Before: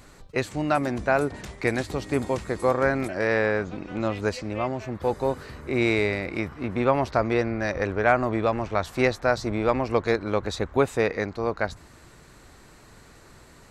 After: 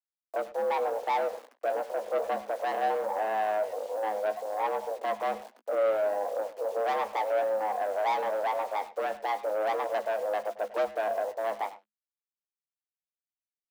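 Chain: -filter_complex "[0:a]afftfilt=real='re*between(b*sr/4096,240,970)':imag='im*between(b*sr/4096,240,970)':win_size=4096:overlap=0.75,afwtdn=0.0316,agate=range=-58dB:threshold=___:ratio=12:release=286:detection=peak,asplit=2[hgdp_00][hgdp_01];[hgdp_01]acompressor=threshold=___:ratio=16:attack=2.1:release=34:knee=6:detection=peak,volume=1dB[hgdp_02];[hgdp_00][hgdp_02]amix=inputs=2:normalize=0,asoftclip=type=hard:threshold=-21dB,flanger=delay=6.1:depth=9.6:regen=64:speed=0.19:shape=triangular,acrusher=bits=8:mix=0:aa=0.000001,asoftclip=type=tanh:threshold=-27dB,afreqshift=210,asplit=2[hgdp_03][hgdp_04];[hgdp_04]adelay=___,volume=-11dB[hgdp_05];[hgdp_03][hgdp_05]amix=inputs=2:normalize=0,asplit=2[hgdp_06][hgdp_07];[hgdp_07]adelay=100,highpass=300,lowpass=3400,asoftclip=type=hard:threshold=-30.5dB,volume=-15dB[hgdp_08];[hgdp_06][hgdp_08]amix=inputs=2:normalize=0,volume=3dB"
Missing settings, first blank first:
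-55dB, -32dB, 16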